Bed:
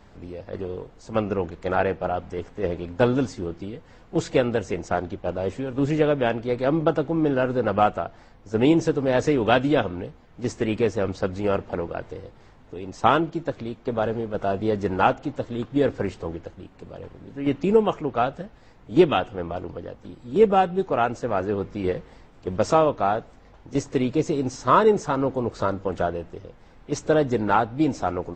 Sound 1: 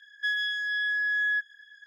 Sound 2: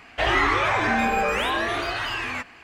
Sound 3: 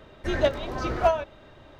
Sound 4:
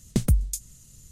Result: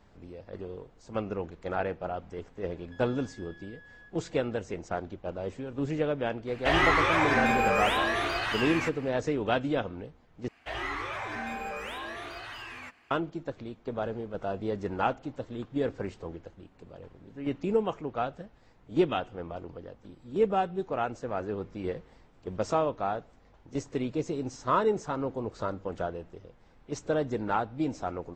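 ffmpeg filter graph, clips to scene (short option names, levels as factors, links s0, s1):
-filter_complex "[2:a]asplit=2[s0][s1];[0:a]volume=0.376[s2];[1:a]acompressor=threshold=0.0141:ratio=6:attack=3.2:release=140:knee=1:detection=peak[s3];[s1]highshelf=f=11000:g=3[s4];[s2]asplit=2[s5][s6];[s5]atrim=end=10.484[s7];[s4]atrim=end=2.63,asetpts=PTS-STARTPTS,volume=0.2[s8];[s6]atrim=start=13.106[s9];[s3]atrim=end=1.86,asetpts=PTS-STARTPTS,volume=0.15,afade=t=in:d=0.004:c=hsin,afade=t=out:st=1.856:d=0.004:c=hsin,adelay=2690[s10];[s0]atrim=end=2.63,asetpts=PTS-STARTPTS,volume=0.708,afade=t=in:d=0.004:c=hsin,afade=t=out:st=2.626:d=0.004:c=hsin,adelay=6470[s11];[s7][s8]acrossfade=d=0.004:c1=hsin:c2=hsin[s12];[s12][s9]acrossfade=d=0.004:c1=hsin:c2=hsin[s13];[s13][s10][s11]amix=inputs=3:normalize=0"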